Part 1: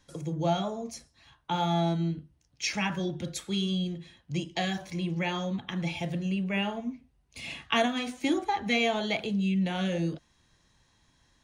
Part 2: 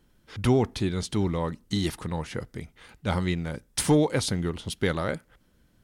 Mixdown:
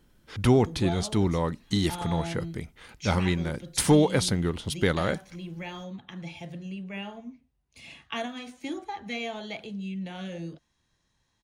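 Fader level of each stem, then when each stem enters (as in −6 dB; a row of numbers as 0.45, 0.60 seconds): −7.5, +1.5 decibels; 0.40, 0.00 seconds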